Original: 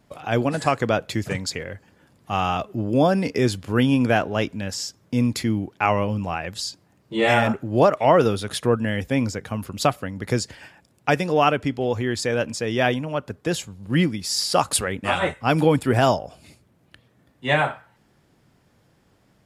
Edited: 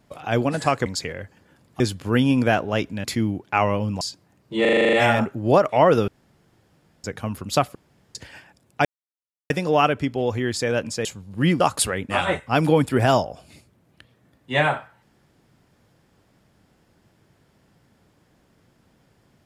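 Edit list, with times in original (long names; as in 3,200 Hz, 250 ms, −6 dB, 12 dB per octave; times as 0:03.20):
0:00.86–0:01.37: remove
0:02.31–0:03.43: remove
0:04.67–0:05.32: remove
0:06.29–0:06.61: remove
0:07.21: stutter 0.04 s, 9 plays
0:08.36–0:09.32: fill with room tone
0:10.03–0:10.43: fill with room tone
0:11.13: splice in silence 0.65 s
0:12.68–0:13.57: remove
0:14.12–0:14.54: remove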